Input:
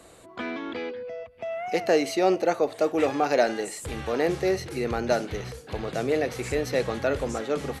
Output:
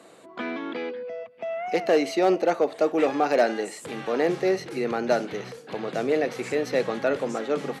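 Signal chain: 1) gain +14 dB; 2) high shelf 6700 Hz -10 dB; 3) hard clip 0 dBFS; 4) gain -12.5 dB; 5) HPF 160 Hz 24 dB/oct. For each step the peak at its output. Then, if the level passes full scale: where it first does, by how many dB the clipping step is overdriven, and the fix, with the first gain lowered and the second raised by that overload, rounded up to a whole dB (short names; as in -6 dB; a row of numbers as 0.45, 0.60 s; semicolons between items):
+5.0, +4.5, 0.0, -12.5, -8.5 dBFS; step 1, 4.5 dB; step 1 +9 dB, step 4 -7.5 dB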